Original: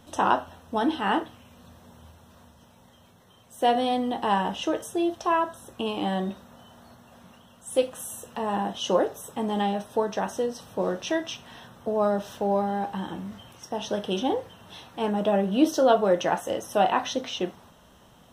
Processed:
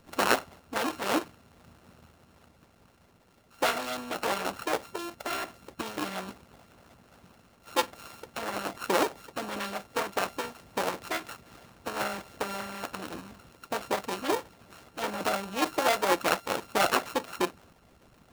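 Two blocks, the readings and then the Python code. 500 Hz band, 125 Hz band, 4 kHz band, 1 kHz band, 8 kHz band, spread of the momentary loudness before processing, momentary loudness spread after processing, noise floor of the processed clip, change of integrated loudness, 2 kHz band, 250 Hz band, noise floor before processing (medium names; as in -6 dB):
-7.0 dB, -10.0 dB, -1.0 dB, -4.5 dB, +1.5 dB, 13 LU, 14 LU, -61 dBFS, -4.5 dB, +3.0 dB, -9.0 dB, -55 dBFS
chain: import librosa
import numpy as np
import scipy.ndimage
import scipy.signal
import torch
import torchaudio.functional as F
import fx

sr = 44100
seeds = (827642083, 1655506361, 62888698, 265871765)

y = np.r_[np.sort(x[:len(x) // 32 * 32].reshape(-1, 32), axis=1).ravel(), x[len(x) // 32 * 32:]]
y = fx.hpss(y, sr, part='harmonic', gain_db=-17)
y = F.gain(torch.from_numpy(y), 3.0).numpy()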